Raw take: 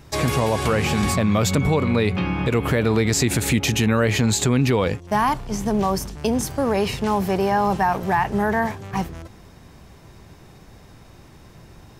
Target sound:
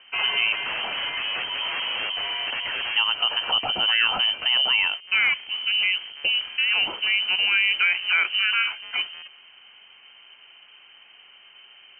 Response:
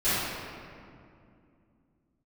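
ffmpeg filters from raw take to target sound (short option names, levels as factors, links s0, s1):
-filter_complex "[0:a]highpass=f=160:p=1,asettb=1/sr,asplit=3[s0][s1][s2];[s0]atrim=end=0.524[s3];[s1]atrim=start=0.52:end=2.96,asetpts=PTS-STARTPTS,afade=t=in:d=0.004:c=qsin,afade=t=out:st=2.436:d=0.004:c=qsin,aeval=exprs='0.0794*(abs(mod(val(0)/0.0794+3,4)-2)-1)':c=same[s4];[s2]atrim=start=2.956[s5];[s3][s4]acrossfade=d=0.004:c1=hsin:c2=qsin[s6];[s6][s5]acrossfade=d=0.004:c1=qsin:c2=hsin,lowpass=f=2700:t=q:w=0.5098,lowpass=f=2700:t=q:w=0.6013,lowpass=f=2700:t=q:w=0.9,lowpass=f=2700:t=q:w=2.563,afreqshift=-3200,volume=0.891"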